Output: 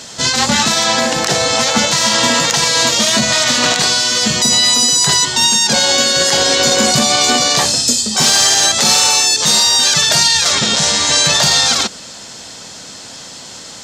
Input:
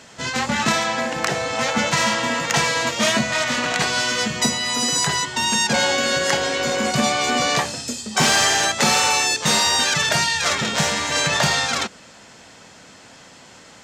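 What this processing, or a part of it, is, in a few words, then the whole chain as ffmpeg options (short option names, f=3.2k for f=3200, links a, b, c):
over-bright horn tweeter: -filter_complex "[0:a]asettb=1/sr,asplit=3[a][b][c];[a]atrim=end=10.514[d];[b]atrim=start=10.51:end=11.24,asetpts=PTS-STARTPTS,afade=t=in:d=0.004:c=qsin,afade=t=out:st=0.726:d=0.004:c=qsin,lowpass=f=9.9k:w=0.5412,lowpass=f=9.9k:w=1.3066[e];[c]atrim=start=11.236[f];[d][e]acrossfade=d=0.004:c1=hsin:c2=qsin[g];[g][f]acrossfade=d=0.004:c1=qsin:c2=hsin,highshelf=f=3.1k:t=q:w=1.5:g=7,alimiter=limit=-10.5dB:level=0:latency=1:release=40,volume=8.5dB"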